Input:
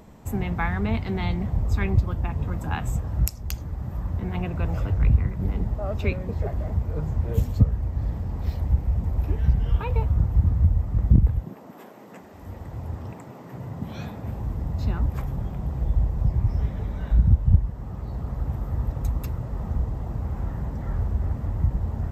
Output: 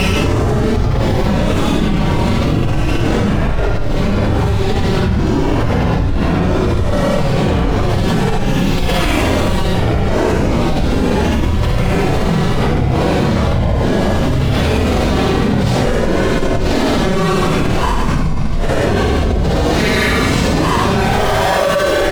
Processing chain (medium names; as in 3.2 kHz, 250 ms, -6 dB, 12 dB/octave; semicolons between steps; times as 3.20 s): peaking EQ 78 Hz -13 dB 2.9 oct; pitch shift -8 st; monotone LPC vocoder at 8 kHz 190 Hz; fuzz box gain 49 dB, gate -55 dBFS; flange 0.16 Hz, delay 5.7 ms, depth 7.8 ms, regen +56%; frequency-shifting echo 296 ms, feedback 46%, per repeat +53 Hz, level -9.5 dB; Paulstretch 9.5×, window 0.05 s, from 7.57 s; level flattener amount 100%; trim -1 dB